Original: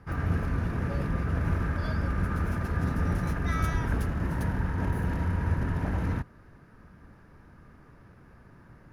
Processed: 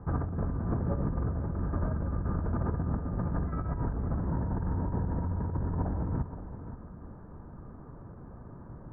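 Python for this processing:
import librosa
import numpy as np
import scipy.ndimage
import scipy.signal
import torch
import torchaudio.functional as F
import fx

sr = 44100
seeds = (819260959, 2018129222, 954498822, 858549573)

y = scipy.signal.sosfilt(scipy.signal.butter(4, 1100.0, 'lowpass', fs=sr, output='sos'), x)
y = fx.over_compress(y, sr, threshold_db=-33.0, ratio=-1.0)
y = y + 10.0 ** (-11.5 / 20.0) * np.pad(y, (int(522 * sr / 1000.0), 0))[:len(y)]
y = F.gain(torch.from_numpy(y), 2.0).numpy()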